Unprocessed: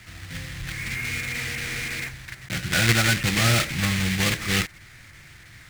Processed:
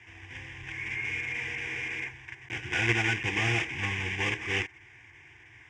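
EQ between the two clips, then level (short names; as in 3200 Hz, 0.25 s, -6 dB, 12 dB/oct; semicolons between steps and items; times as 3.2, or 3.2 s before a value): speaker cabinet 120–5300 Hz, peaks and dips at 250 Hz -8 dB, 570 Hz -4 dB, 1900 Hz -4 dB, 4000 Hz -9 dB; fixed phaser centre 880 Hz, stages 8; 0.0 dB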